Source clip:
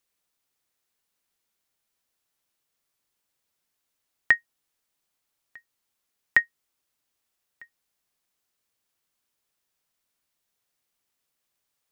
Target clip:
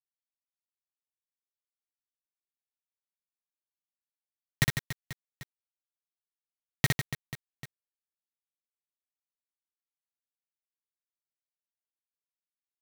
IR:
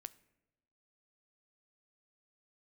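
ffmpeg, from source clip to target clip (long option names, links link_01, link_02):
-filter_complex "[0:a]equalizer=frequency=400:width_type=o:width=0.67:gain=-8,equalizer=frequency=1600:width_type=o:width=0.67:gain=-7,equalizer=frequency=4000:width_type=o:width=0.67:gain=10,aeval=exprs='val(0)+0.00447*sin(2*PI*1400*n/s)':channel_layout=same,acrossover=split=2200[link_01][link_02];[link_01]acrusher=samples=22:mix=1:aa=0.000001[link_03];[link_03][link_02]amix=inputs=2:normalize=0,atempo=0.93,acrusher=bits=3:mix=0:aa=0.000001,aecho=1:1:60|150|285|487.5|791.2:0.631|0.398|0.251|0.158|0.1"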